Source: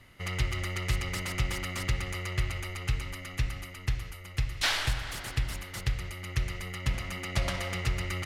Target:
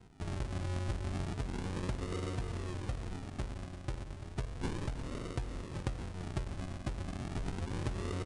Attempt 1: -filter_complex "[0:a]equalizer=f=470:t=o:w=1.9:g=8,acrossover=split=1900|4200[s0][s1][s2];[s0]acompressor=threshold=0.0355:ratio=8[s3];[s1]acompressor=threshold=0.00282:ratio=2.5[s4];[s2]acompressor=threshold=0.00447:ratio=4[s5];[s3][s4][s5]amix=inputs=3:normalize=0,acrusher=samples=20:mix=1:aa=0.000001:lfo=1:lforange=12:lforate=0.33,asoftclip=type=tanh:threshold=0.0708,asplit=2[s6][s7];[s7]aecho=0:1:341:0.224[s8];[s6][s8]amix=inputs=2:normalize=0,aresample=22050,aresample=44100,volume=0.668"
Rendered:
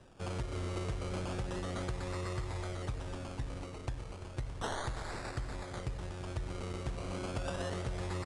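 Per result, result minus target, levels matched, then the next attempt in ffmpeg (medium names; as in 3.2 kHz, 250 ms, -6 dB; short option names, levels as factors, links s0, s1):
saturation: distortion +11 dB; decimation with a swept rate: distortion -6 dB
-filter_complex "[0:a]equalizer=f=470:t=o:w=1.9:g=8,acrossover=split=1900|4200[s0][s1][s2];[s0]acompressor=threshold=0.0355:ratio=8[s3];[s1]acompressor=threshold=0.00282:ratio=2.5[s4];[s2]acompressor=threshold=0.00447:ratio=4[s5];[s3][s4][s5]amix=inputs=3:normalize=0,acrusher=samples=20:mix=1:aa=0.000001:lfo=1:lforange=12:lforate=0.33,asoftclip=type=tanh:threshold=0.158,asplit=2[s6][s7];[s7]aecho=0:1:341:0.224[s8];[s6][s8]amix=inputs=2:normalize=0,aresample=22050,aresample=44100,volume=0.668"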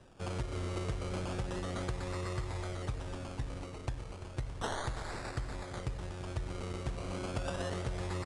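decimation with a swept rate: distortion -6 dB
-filter_complex "[0:a]equalizer=f=470:t=o:w=1.9:g=8,acrossover=split=1900|4200[s0][s1][s2];[s0]acompressor=threshold=0.0355:ratio=8[s3];[s1]acompressor=threshold=0.00282:ratio=2.5[s4];[s2]acompressor=threshold=0.00447:ratio=4[s5];[s3][s4][s5]amix=inputs=3:normalize=0,acrusher=samples=75:mix=1:aa=0.000001:lfo=1:lforange=45:lforate=0.33,asoftclip=type=tanh:threshold=0.158,asplit=2[s6][s7];[s7]aecho=0:1:341:0.224[s8];[s6][s8]amix=inputs=2:normalize=0,aresample=22050,aresample=44100,volume=0.668"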